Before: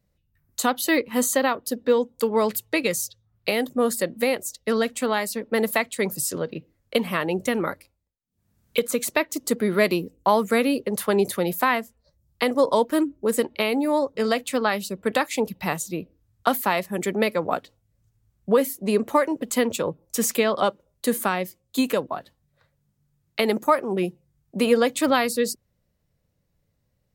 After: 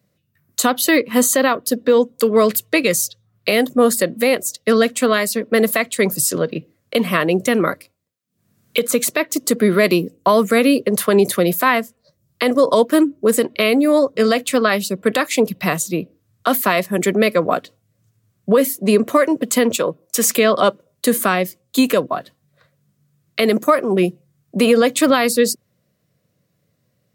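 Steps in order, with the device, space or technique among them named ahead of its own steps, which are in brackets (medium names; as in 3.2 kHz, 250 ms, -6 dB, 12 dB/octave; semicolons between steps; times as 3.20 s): PA system with an anti-feedback notch (high-pass 110 Hz 24 dB/octave; Butterworth band-stop 860 Hz, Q 5.3; peak limiter -13 dBFS, peak gain reduction 7 dB); 19.76–20.28 s: bass shelf 220 Hz -11 dB; trim +8.5 dB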